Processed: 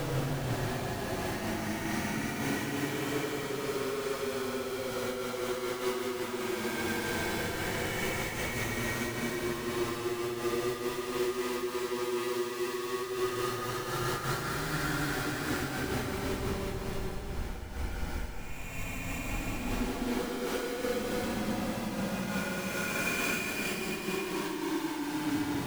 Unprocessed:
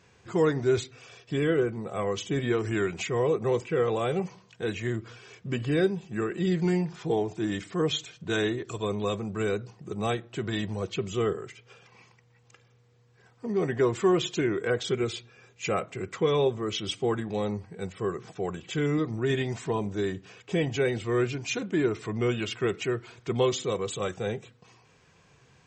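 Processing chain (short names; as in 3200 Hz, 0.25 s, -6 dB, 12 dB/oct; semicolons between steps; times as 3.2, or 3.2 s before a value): spectral delay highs late, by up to 0.771 s; three-band isolator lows -15 dB, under 240 Hz, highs -21 dB, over 2500 Hz; Schmitt trigger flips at -41 dBFS; Paulstretch 22×, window 0.10 s, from 20.68; noise-modulated level, depth 65%; gain +3.5 dB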